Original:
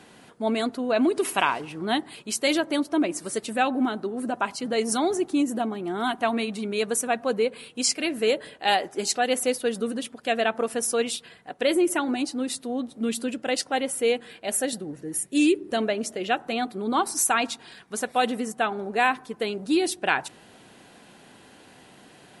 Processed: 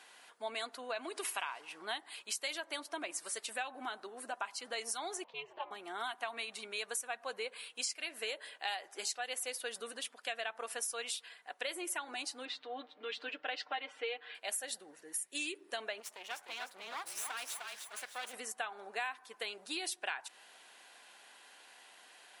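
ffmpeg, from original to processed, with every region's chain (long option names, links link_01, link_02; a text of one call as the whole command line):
ffmpeg -i in.wav -filter_complex "[0:a]asettb=1/sr,asplit=3[link_01][link_02][link_03];[link_01]atrim=end=5.244[link_04];[link_02]atrim=start=5.24:end=5.71,asetpts=PTS-STARTPTS,afade=type=in:duration=0.004:curve=qsin,afade=type=out:start_time=0.466:duration=0.004:curve=qsin,highpass=420,equalizer=frequency=560:width_type=q:width=4:gain=-5,equalizer=frequency=910:width_type=q:width=4:gain=8,equalizer=frequency=1300:width_type=q:width=4:gain=-10,equalizer=frequency=1800:width_type=q:width=4:gain=-6,equalizer=frequency=2800:width_type=q:width=4:gain=4,lowpass=frequency=3200:width=0.5412,lowpass=frequency=3200:width=1.3066,aeval=exprs='val(0)*sin(2*PI*140*n/s)':channel_layout=same[link_05];[link_03]atrim=start=5.706[link_06];[link_04][link_05]acrossfade=duration=0.004:curve1=hsin:curve2=qsin[link_07];[link_07][link_06]acrossfade=duration=0.004:curve1=qsin:curve2=hsin,asettb=1/sr,asplit=3[link_08][link_09][link_10];[link_08]atrim=end=12.454[link_11];[link_09]atrim=start=12.45:end=14.35,asetpts=PTS-STARTPTS,afade=type=in:duration=0.004:curve=qsin,afade=type=out:start_time=1.896:duration=0.004:curve=qsin,lowpass=frequency=3700:width=0.5412,lowpass=frequency=3700:width=1.3066,aecho=1:1:6.6:0.78,atrim=end_sample=83790[link_12];[link_10]atrim=start=14.346[link_13];[link_11][link_12]acrossfade=duration=0.004:curve1=hsin:curve2=qsin[link_14];[link_14][link_13]acrossfade=duration=0.004:curve1=qsin:curve2=hsin,asettb=1/sr,asplit=3[link_15][link_16][link_17];[link_15]atrim=end=16.004[link_18];[link_16]atrim=start=16:end=18.34,asetpts=PTS-STARTPTS,afade=type=in:duration=0.004:curve=qsin,afade=type=out:start_time=2.336:duration=0.004:curve=qsin,acompressor=threshold=-39dB:ratio=1.5:attack=3.2:release=140:knee=1:detection=peak,aeval=exprs='max(val(0),0)':channel_layout=same,asplit=6[link_19][link_20][link_21][link_22][link_23][link_24];[link_20]adelay=303,afreqshift=-46,volume=-5dB[link_25];[link_21]adelay=606,afreqshift=-92,volume=-12.7dB[link_26];[link_22]adelay=909,afreqshift=-138,volume=-20.5dB[link_27];[link_23]adelay=1212,afreqshift=-184,volume=-28.2dB[link_28];[link_24]adelay=1515,afreqshift=-230,volume=-36dB[link_29];[link_19][link_25][link_26][link_27][link_28][link_29]amix=inputs=6:normalize=0,atrim=end_sample=103194[link_30];[link_17]atrim=start=18.336[link_31];[link_18][link_30]acrossfade=duration=0.004:curve1=hsin:curve2=qsin[link_32];[link_32][link_31]acrossfade=duration=0.004:curve1=qsin:curve2=hsin,highpass=940,bandreject=frequency=1300:width=25,acompressor=threshold=-32dB:ratio=6,volume=-3.5dB" out.wav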